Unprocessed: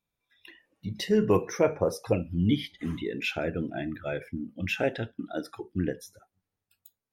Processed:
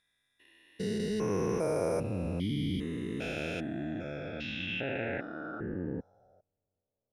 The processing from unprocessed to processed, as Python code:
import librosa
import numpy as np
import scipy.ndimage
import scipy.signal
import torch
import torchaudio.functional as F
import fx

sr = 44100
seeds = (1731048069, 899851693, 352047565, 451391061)

y = fx.spec_steps(x, sr, hold_ms=400)
y = fx.filter_sweep_lowpass(y, sr, from_hz=10000.0, to_hz=580.0, start_s=3.53, end_s=6.51, q=4.0)